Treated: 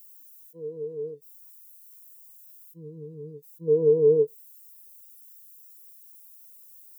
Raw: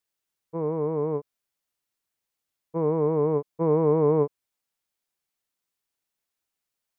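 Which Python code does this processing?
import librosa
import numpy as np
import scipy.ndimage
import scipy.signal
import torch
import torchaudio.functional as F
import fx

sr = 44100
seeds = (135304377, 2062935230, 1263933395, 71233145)

y = x + 0.5 * 10.0 ** (-17.5 / 20.0) * np.diff(np.sign(x), prepend=np.sign(x[:1]))
y = fx.peak_eq(y, sr, hz=660.0, db=-12.5, octaves=1.3, at=(1.14, 3.68))
y = y + 10.0 ** (-19.5 / 20.0) * np.pad(y, (int(107 * sr / 1000.0), 0))[:len(y)]
y = fx.spectral_expand(y, sr, expansion=2.5)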